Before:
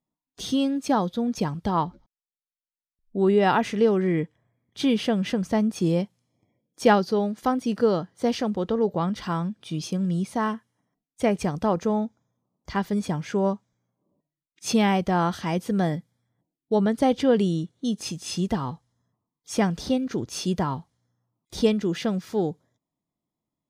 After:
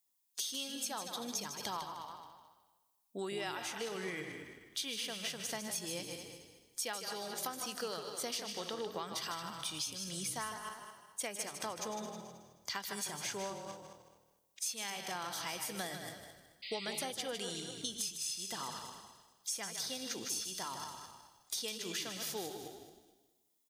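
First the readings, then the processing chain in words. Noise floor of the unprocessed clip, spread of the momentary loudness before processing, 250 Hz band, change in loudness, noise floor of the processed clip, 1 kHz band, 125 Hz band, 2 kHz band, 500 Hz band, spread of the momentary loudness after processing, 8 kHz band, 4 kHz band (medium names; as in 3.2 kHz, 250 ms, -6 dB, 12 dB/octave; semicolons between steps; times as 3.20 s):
under -85 dBFS, 9 LU, -24.0 dB, -14.5 dB, -76 dBFS, -15.5 dB, -24.0 dB, -9.5 dB, -19.0 dB, 12 LU, +1.5 dB, -3.0 dB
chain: backward echo that repeats 108 ms, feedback 53%, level -11.5 dB; differentiator; compression 16:1, threshold -50 dBFS, peak gain reduction 23 dB; frequency-shifting echo 154 ms, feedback 34%, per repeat -39 Hz, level -8.5 dB; painted sound noise, 16.62–17.04 s, 1.9–5 kHz -59 dBFS; trim +13.5 dB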